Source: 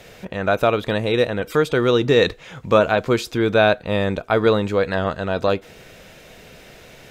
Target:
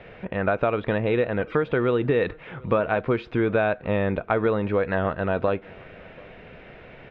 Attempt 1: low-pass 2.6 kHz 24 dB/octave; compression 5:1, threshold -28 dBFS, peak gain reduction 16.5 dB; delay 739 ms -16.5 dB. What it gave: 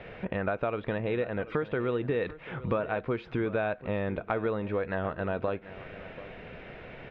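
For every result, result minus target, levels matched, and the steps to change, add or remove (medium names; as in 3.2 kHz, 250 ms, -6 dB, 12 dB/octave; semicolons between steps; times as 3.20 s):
compression: peak gain reduction +7.5 dB; echo-to-direct +9 dB
change: compression 5:1, threshold -18.5 dBFS, peak gain reduction 8.5 dB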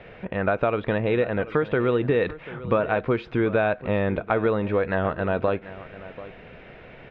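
echo-to-direct +9 dB
change: delay 739 ms -25.5 dB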